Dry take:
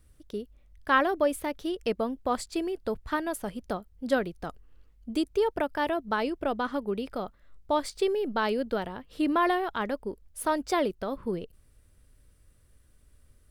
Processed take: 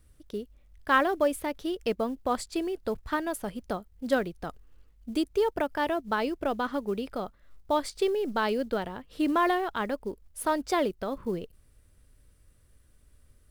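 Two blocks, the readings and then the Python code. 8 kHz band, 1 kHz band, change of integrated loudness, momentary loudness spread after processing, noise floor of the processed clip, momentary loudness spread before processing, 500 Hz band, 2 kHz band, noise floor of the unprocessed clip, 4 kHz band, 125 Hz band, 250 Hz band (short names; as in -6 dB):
0.0 dB, 0.0 dB, 0.0 dB, 13 LU, -61 dBFS, 13 LU, 0.0 dB, 0.0 dB, -61 dBFS, 0.0 dB, 0.0 dB, 0.0 dB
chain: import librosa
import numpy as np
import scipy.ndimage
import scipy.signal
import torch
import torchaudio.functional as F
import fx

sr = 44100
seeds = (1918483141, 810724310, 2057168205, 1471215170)

y = fx.quant_float(x, sr, bits=4)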